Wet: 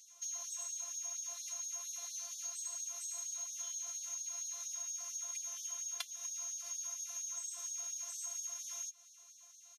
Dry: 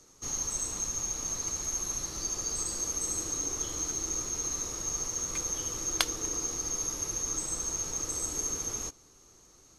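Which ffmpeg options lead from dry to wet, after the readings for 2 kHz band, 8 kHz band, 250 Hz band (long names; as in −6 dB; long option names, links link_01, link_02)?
−13.0 dB, −8.5 dB, below −40 dB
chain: -filter_complex "[0:a]afftfilt=real='hypot(re,im)*cos(PI*b)':imag='0':win_size=512:overlap=0.75,aecho=1:1:5.5:0.55,acrossover=split=170|470|1500[link_01][link_02][link_03][link_04];[link_01]acompressor=threshold=-47dB:ratio=4[link_05];[link_02]acompressor=threshold=-55dB:ratio=4[link_06];[link_03]acompressor=threshold=-59dB:ratio=4[link_07];[link_04]acompressor=threshold=-43dB:ratio=4[link_08];[link_05][link_06][link_07][link_08]amix=inputs=4:normalize=0,asubboost=boost=12:cutoff=120,afftfilt=real='re*gte(b*sr/1024,390*pow(3400/390,0.5+0.5*sin(2*PI*4.3*pts/sr)))':imag='im*gte(b*sr/1024,390*pow(3400/390,0.5+0.5*sin(2*PI*4.3*pts/sr)))':win_size=1024:overlap=0.75,volume=2dB"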